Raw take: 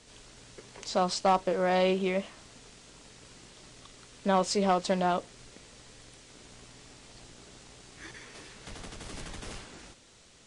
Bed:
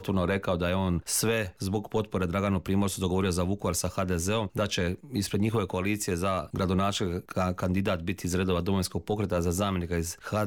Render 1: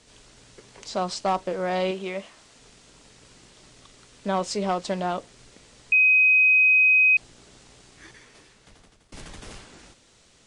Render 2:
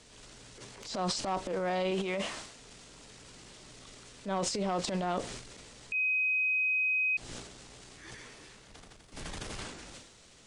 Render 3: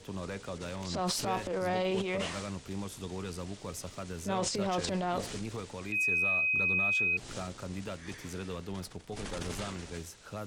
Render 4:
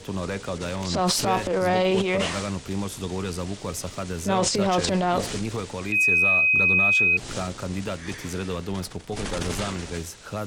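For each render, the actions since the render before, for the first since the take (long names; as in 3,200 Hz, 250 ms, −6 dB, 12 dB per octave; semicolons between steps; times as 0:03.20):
0:01.91–0:02.60: low-shelf EQ 280 Hz −8 dB; 0:05.92–0:07.17: beep over 2,520 Hz −14 dBFS; 0:07.80–0:09.12: fade out, to −23 dB
downward compressor 10 to 1, threshold −28 dBFS, peak gain reduction 12 dB; transient designer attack −9 dB, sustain +11 dB
mix in bed −12.5 dB
level +9.5 dB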